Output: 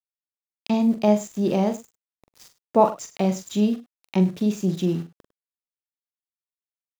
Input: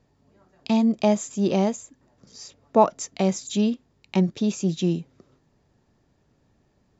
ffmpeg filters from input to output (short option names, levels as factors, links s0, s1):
-filter_complex "[0:a]highshelf=f=2700:g=-5,aeval=exprs='val(0)*gte(abs(val(0)),0.00944)':c=same,asplit=2[s0][s1];[s1]aecho=0:1:43|102:0.376|0.119[s2];[s0][s2]amix=inputs=2:normalize=0"